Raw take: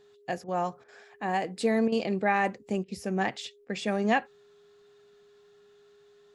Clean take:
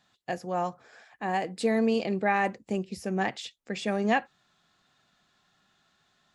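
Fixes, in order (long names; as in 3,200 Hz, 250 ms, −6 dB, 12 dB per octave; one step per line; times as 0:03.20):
notch filter 410 Hz, Q 30
repair the gap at 0:00.44/0:00.84/0:01.88/0:02.84/0:03.65, 41 ms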